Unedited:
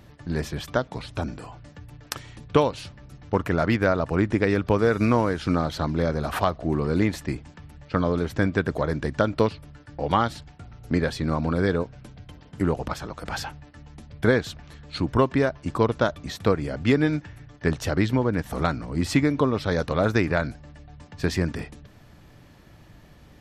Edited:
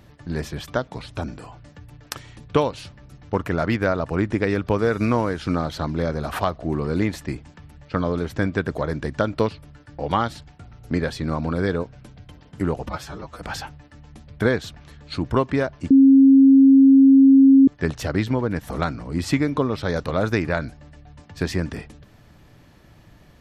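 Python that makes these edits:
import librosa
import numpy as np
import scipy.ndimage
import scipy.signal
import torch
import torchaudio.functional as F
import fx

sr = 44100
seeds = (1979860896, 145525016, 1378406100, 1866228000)

y = fx.edit(x, sr, fx.stretch_span(start_s=12.86, length_s=0.35, factor=1.5),
    fx.bleep(start_s=15.73, length_s=1.77, hz=270.0, db=-8.0), tone=tone)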